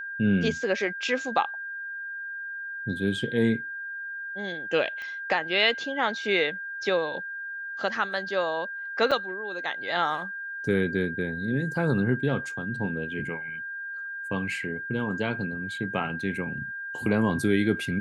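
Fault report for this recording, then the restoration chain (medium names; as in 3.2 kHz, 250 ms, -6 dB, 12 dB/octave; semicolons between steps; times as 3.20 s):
whine 1.6 kHz -33 dBFS
5.02 s: pop -26 dBFS
9.11–9.12 s: dropout 5.8 ms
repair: de-click; band-stop 1.6 kHz, Q 30; interpolate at 9.11 s, 5.8 ms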